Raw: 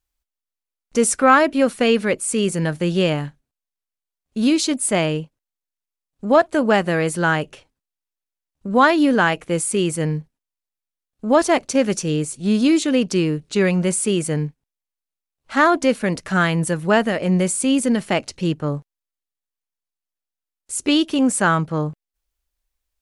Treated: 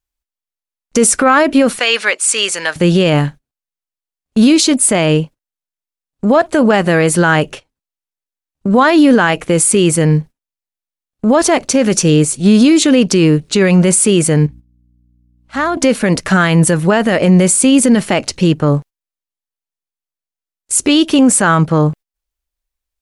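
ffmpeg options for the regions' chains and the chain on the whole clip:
ffmpeg -i in.wav -filter_complex "[0:a]asettb=1/sr,asplit=3[link_01][link_02][link_03];[link_01]atrim=end=1.794[link_04];[link_02]atrim=start=1.79:end=2.76,asetpts=PTS-STARTPTS,afade=type=in:duration=0.004:curve=qsin,afade=type=out:start_time=0.966:duration=0.004:curve=qsin,highpass=780,lowpass=7500,tiltshelf=frequency=1300:gain=-3.5[link_05];[link_03]atrim=start=2.756[link_06];[link_04][link_05]acrossfade=duration=0.004:curve1=hsin:curve2=qsin[link_07];[link_07][link_06]acrossfade=duration=0.004:curve1=qsin:curve2=hsin,asettb=1/sr,asplit=3[link_08][link_09][link_10];[link_08]atrim=end=14.464[link_11];[link_09]atrim=start=14.46:end=15.77,asetpts=PTS-STARTPTS,afade=type=in:duration=0.004:curve=qsin,afade=type=out:start_time=1.306:duration=0.004:curve=qsin,acompressor=threshold=-50dB:ratio=1.5:attack=3.2:release=140:knee=1:detection=peak,aeval=exprs='val(0)+0.00316*(sin(2*PI*60*n/s)+sin(2*PI*2*60*n/s)/2+sin(2*PI*3*60*n/s)/3+sin(2*PI*4*60*n/s)/4+sin(2*PI*5*60*n/s)/5)':channel_layout=same[link_12];[link_10]atrim=start=15.766[link_13];[link_11][link_12]acrossfade=duration=0.004:curve1=hsin:curve2=qsin[link_14];[link_14][link_13]acrossfade=duration=0.004:curve1=qsin:curve2=hsin,agate=range=-15dB:threshold=-39dB:ratio=16:detection=peak,alimiter=level_in=13.5dB:limit=-1dB:release=50:level=0:latency=1,volume=-1dB" out.wav

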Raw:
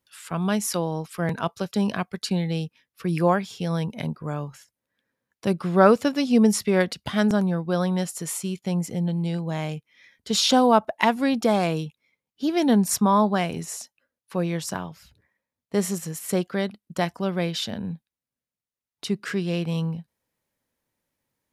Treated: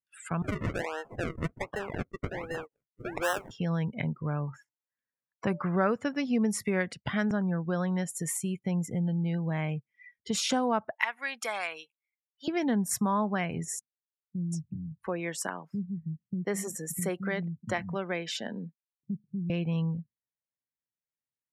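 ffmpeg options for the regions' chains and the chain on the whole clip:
ffmpeg -i in.wav -filter_complex "[0:a]asettb=1/sr,asplit=3[link_01][link_02][link_03];[link_01]atrim=end=0.424[link_04];[link_02]atrim=start=0.42:end=3.51,asetpts=PTS-STARTPTS,afade=type=in:duration=0.004:curve=qsin,afade=type=out:start_time=3.086:duration=0.004:curve=qsin,highpass=frequency=420:width=0.5412,highpass=frequency=420:width=1.3066,acrusher=samples=38:mix=1:aa=0.000001:lfo=1:lforange=38:lforate=1.3[link_05];[link_03]atrim=start=3.506[link_06];[link_04][link_05]acrossfade=duration=0.004:curve1=hsin:curve2=qsin[link_07];[link_07][link_06]acrossfade=duration=0.004:curve1=qsin:curve2=hsin,asettb=1/sr,asplit=3[link_08][link_09][link_10];[link_08]atrim=end=4.474[link_11];[link_09]atrim=start=4.47:end=5.76,asetpts=PTS-STARTPTS,afade=type=in:duration=0.004:curve=qsin,afade=type=out:start_time=1.286:duration=0.004:curve=qsin,equalizer=frequency=1000:width_type=o:width=1.5:gain=7.5,bandreject=frequency=293:width_type=h:width=4,bandreject=frequency=586:width_type=h:width=4,bandreject=frequency=879:width_type=h:width=4[link_12];[link_10]atrim=start=5.756[link_13];[link_11][link_12]acrossfade=duration=0.004:curve1=hsin:curve2=qsin[link_14];[link_14][link_13]acrossfade=duration=0.004:curve1=qsin:curve2=hsin,asettb=1/sr,asplit=3[link_15][link_16][link_17];[link_15]atrim=end=10.954[link_18];[link_16]atrim=start=10.95:end=12.48,asetpts=PTS-STARTPTS,afade=type=in:duration=0.004:curve=qsin,afade=type=out:start_time=1.526:duration=0.004:curve=qsin,highpass=1100,highshelf=frequency=8800:gain=5.5[link_19];[link_17]atrim=start=12.476[link_20];[link_18][link_19]acrossfade=duration=0.004:curve1=hsin:curve2=qsin[link_21];[link_21][link_20]acrossfade=duration=0.004:curve1=qsin:curve2=hsin,asettb=1/sr,asplit=3[link_22][link_23][link_24];[link_22]atrim=end=13.794[link_25];[link_23]atrim=start=13.79:end=19.5,asetpts=PTS-STARTPTS,afade=type=in:duration=0.004:curve=qsin,afade=type=out:start_time=5.706:duration=0.004:curve=qsin,lowshelf=frequency=69:gain=-7,acrossover=split=210[link_26][link_27];[link_27]adelay=730[link_28];[link_26][link_28]amix=inputs=2:normalize=0,atrim=end_sample=251811[link_29];[link_24]atrim=start=19.496[link_30];[link_25][link_29]acrossfade=duration=0.004:curve1=hsin:curve2=qsin[link_31];[link_31][link_30]acrossfade=duration=0.004:curve1=qsin:curve2=hsin,afftdn=noise_reduction=27:noise_floor=-42,equalizer=frequency=125:width_type=o:width=1:gain=6,equalizer=frequency=2000:width_type=o:width=1:gain=9,equalizer=frequency=4000:width_type=o:width=1:gain=-8,equalizer=frequency=8000:width_type=o:width=1:gain=4,acompressor=threshold=-33dB:ratio=2" out.wav

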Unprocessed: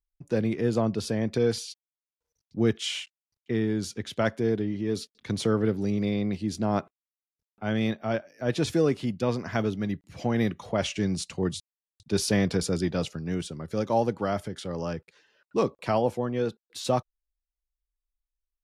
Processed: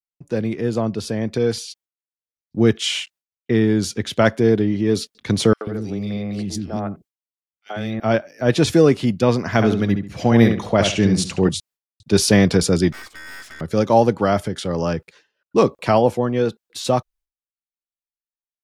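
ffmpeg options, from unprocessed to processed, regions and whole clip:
ffmpeg -i in.wav -filter_complex "[0:a]asettb=1/sr,asplit=3[link_01][link_02][link_03];[link_01]atrim=end=5.534[link_04];[link_02]atrim=start=5.53:end=8,asetpts=PTS-STARTPTS,afade=type=in:duration=0.004:curve=qsin,afade=type=out:start_time=2.466:duration=0.004:curve=qsin,bandreject=frequency=990:width=6.5,acompressor=threshold=-31dB:ratio=4:attack=3.2:release=140:knee=1:detection=peak,acrossover=split=350|2300[link_05][link_06][link_07];[link_06]adelay=80[link_08];[link_05]adelay=140[link_09];[link_09][link_08][link_07]amix=inputs=3:normalize=0,atrim=end_sample=108927[link_10];[link_03]atrim=start=7.996[link_11];[link_04][link_10]acrossfade=duration=0.004:curve1=hsin:curve2=qsin[link_12];[link_12][link_11]acrossfade=duration=0.004:curve1=qsin:curve2=hsin,asettb=1/sr,asplit=3[link_13][link_14][link_15];[link_13]atrim=end=9.494[link_16];[link_14]atrim=start=9.49:end=11.49,asetpts=PTS-STARTPTS,afade=type=in:duration=0.004:curve=qsin,afade=type=out:start_time=1.996:duration=0.004:curve=qsin,agate=range=-33dB:threshold=-58dB:ratio=3:release=100:detection=peak,asplit=2[link_17][link_18];[link_18]adelay=69,lowpass=frequency=3200:poles=1,volume=-6dB,asplit=2[link_19][link_20];[link_20]adelay=69,lowpass=frequency=3200:poles=1,volume=0.29,asplit=2[link_21][link_22];[link_22]adelay=69,lowpass=frequency=3200:poles=1,volume=0.29,asplit=2[link_23][link_24];[link_24]adelay=69,lowpass=frequency=3200:poles=1,volume=0.29[link_25];[link_17][link_19][link_21][link_23][link_25]amix=inputs=5:normalize=0,atrim=end_sample=88200[link_26];[link_15]atrim=start=11.486[link_27];[link_16][link_26]acrossfade=duration=0.004:curve1=hsin:curve2=qsin[link_28];[link_28][link_27]acrossfade=duration=0.004:curve1=qsin:curve2=hsin,asettb=1/sr,asplit=3[link_29][link_30][link_31];[link_29]atrim=end=12.924[link_32];[link_30]atrim=start=12.92:end=13.61,asetpts=PTS-STARTPTS,afade=type=in:duration=0.004:curve=qsin,afade=type=out:start_time=0.686:duration=0.004:curve=qsin,acrossover=split=2600[link_33][link_34];[link_34]acompressor=threshold=-43dB:ratio=4:attack=1:release=60[link_35];[link_33][link_35]amix=inputs=2:normalize=0,aeval=exprs='val(0)*sin(2*PI*1700*n/s)':channel_layout=same,aeval=exprs='(tanh(200*val(0)+0.75)-tanh(0.75))/200':channel_layout=same[link_36];[link_31]atrim=start=13.606[link_37];[link_32][link_36]acrossfade=duration=0.004:curve1=hsin:curve2=qsin[link_38];[link_38][link_37]acrossfade=duration=0.004:curve1=qsin:curve2=hsin,agate=range=-33dB:threshold=-53dB:ratio=3:detection=peak,dynaudnorm=framelen=360:gausssize=13:maxgain=7dB,volume=3.5dB" out.wav

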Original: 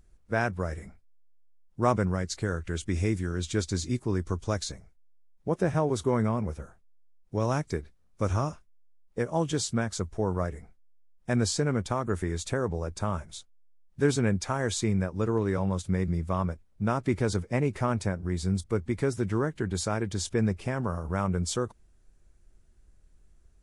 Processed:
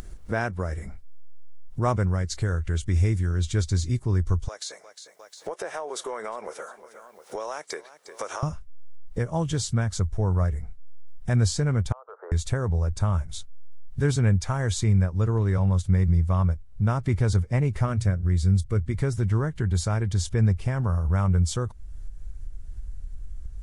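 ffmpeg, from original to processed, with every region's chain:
ffmpeg -i in.wav -filter_complex "[0:a]asettb=1/sr,asplit=3[link_01][link_02][link_03];[link_01]atrim=end=4.484[link_04];[link_02]atrim=start=4.48:end=8.43,asetpts=PTS-STARTPTS,afade=type=in:duration=0.004:curve=qsin,afade=type=out:start_time=3.946:duration=0.004:curve=qsin,highpass=frequency=440:width=0.5412,highpass=frequency=440:width=1.3066,acompressor=threshold=-38dB:ratio=2.5:attack=3.2:release=140:knee=1:detection=peak,aecho=1:1:356|712:0.0668|0.0207,atrim=end_sample=174195[link_05];[link_03]atrim=start=8.426[link_06];[link_04][link_05]acrossfade=duration=0.004:curve1=hsin:curve2=qsin[link_07];[link_07][link_06]acrossfade=duration=0.004:curve1=qsin:curve2=hsin,asettb=1/sr,asplit=3[link_08][link_09][link_10];[link_08]atrim=end=11.924[link_11];[link_09]atrim=start=11.92:end=12.32,asetpts=PTS-STARTPTS,afade=type=in:duration=0.004:curve=qsin,afade=type=out:start_time=0.396:duration=0.004:curve=qsin,asuperpass=centerf=800:order=12:qfactor=0.85,acompressor=threshold=-44dB:ratio=4:attack=3.2:release=140:knee=1:detection=peak[link_12];[link_10]atrim=start=12.316[link_13];[link_11][link_12]acrossfade=duration=0.004:curve1=hsin:curve2=qsin[link_14];[link_14][link_13]acrossfade=duration=0.004:curve1=qsin:curve2=hsin,asettb=1/sr,asplit=3[link_15][link_16][link_17];[link_15]atrim=end=17.854[link_18];[link_16]atrim=start=17.85:end=18.95,asetpts=PTS-STARTPTS,afade=type=in:duration=0.004:curve=qsin,afade=type=out:start_time=1.096:duration=0.004:curve=qsin,equalizer=frequency=870:width_type=o:width=0.28:gain=-12.5,bandreject=frequency=60:width_type=h:width=6,bandreject=frequency=120:width_type=h:width=6[link_19];[link_17]atrim=start=18.946[link_20];[link_18][link_19]acrossfade=duration=0.004:curve1=hsin:curve2=qsin[link_21];[link_21][link_20]acrossfade=duration=0.004:curve1=qsin:curve2=hsin,bandreject=frequency=2500:width=20,asubboost=boost=6:cutoff=110,acompressor=mode=upward:threshold=-23dB:ratio=2.5" out.wav

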